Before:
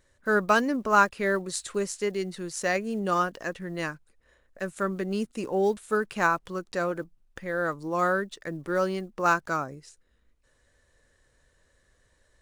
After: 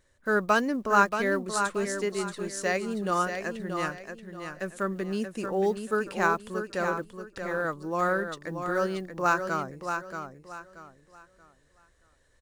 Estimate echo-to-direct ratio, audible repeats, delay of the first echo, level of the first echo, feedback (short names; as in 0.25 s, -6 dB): -6.5 dB, 3, 0.63 s, -7.0 dB, 29%